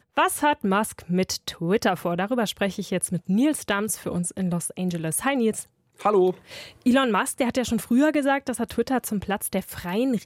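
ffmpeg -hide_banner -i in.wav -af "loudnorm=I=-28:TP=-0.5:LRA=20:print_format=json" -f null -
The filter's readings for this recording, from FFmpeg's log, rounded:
"input_i" : "-24.4",
"input_tp" : "-9.1",
"input_lra" : "2.6",
"input_thresh" : "-34.5",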